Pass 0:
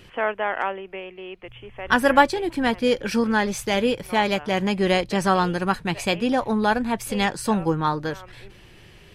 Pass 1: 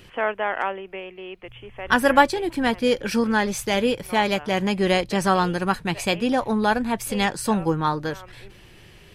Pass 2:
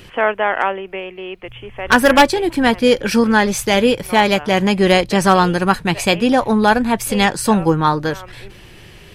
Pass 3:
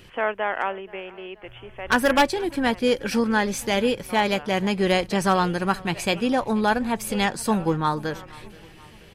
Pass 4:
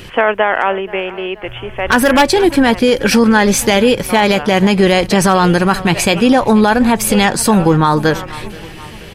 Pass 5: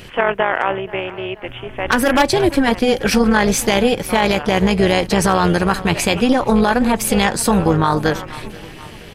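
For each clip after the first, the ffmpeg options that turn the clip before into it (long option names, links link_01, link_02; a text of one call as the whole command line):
ffmpeg -i in.wav -af "highshelf=frequency=8900:gain=4.5" out.wav
ffmpeg -i in.wav -af "aeval=exprs='0.355*(abs(mod(val(0)/0.355+3,4)-2)-1)':channel_layout=same,volume=7.5dB" out.wav
ffmpeg -i in.wav -af "aecho=1:1:479|958|1437|1916:0.0708|0.0382|0.0206|0.0111,volume=-8dB" out.wav
ffmpeg -i in.wav -af "alimiter=level_in=16.5dB:limit=-1dB:release=50:level=0:latency=1,volume=-1dB" out.wav
ffmpeg -i in.wav -af "tremolo=f=260:d=0.667,volume=-1dB" out.wav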